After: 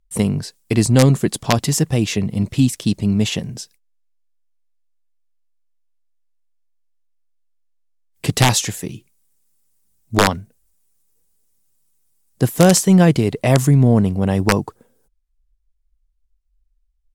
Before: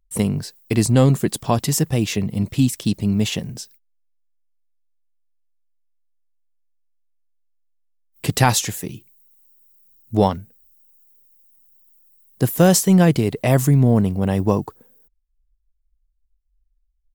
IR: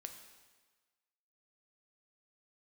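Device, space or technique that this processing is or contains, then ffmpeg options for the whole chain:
overflowing digital effects unit: -af "aeval=exprs='(mod(1.78*val(0)+1,2)-1)/1.78':c=same,lowpass=11000,volume=1.26"

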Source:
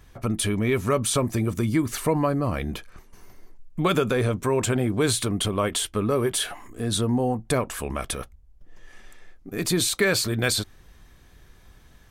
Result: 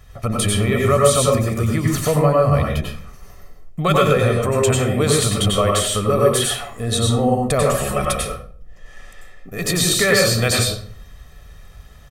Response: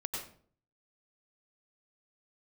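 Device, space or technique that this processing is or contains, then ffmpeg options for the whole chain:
microphone above a desk: -filter_complex "[0:a]asettb=1/sr,asplit=3[s0][s1][s2];[s0]atrim=end=7.654[s3];[s1]atrim=start=7.65:end=8.12,asetpts=PTS-STARTPTS,afade=t=in:d=0.004:c=qsin,afade=t=out:st=0.466:d=0.004:c=qsin,aecho=1:1:5.5:0.9,atrim=end_sample=20727[s4];[s2]atrim=start=8.116[s5];[s3][s4]acrossfade=d=0.004:c1=hsin:c2=qsin[s6];[s6][s5]acrossfade=d=0.004:c1=qsin:c2=hsin,aecho=1:1:1.6:0.61[s7];[1:a]atrim=start_sample=2205[s8];[s7][s8]afir=irnorm=-1:irlink=0,volume=1.68"

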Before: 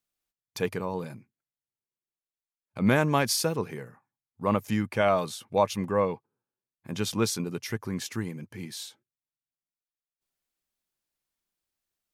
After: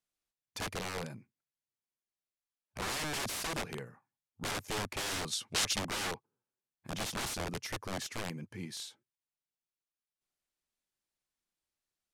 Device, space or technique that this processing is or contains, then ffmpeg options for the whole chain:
overflowing digital effects unit: -filter_complex "[0:a]aeval=exprs='(mod(22.4*val(0)+1,2)-1)/22.4':c=same,lowpass=11000,asplit=3[s0][s1][s2];[s0]afade=t=out:st=5.31:d=0.02[s3];[s1]equalizer=f=5200:t=o:w=2.7:g=9.5,afade=t=in:st=5.31:d=0.02,afade=t=out:st=5.78:d=0.02[s4];[s2]afade=t=in:st=5.78:d=0.02[s5];[s3][s4][s5]amix=inputs=3:normalize=0,volume=0.668"

